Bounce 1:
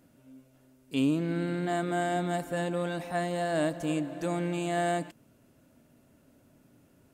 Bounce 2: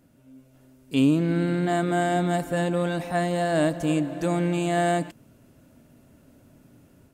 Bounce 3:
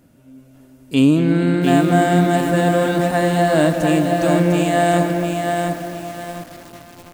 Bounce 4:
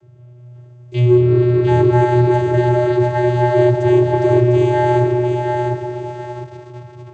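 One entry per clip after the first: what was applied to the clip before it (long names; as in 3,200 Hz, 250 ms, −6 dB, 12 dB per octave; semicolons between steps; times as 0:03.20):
low-shelf EQ 170 Hz +5.5 dB; automatic gain control gain up to 5 dB
tape delay 226 ms, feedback 76%, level −8.5 dB, low-pass 2,600 Hz; feedback echo at a low word length 703 ms, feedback 35%, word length 7 bits, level −4 dB; level +6.5 dB
channel vocoder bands 16, square 122 Hz; in parallel at −5 dB: soft clipping −16 dBFS, distortion −11 dB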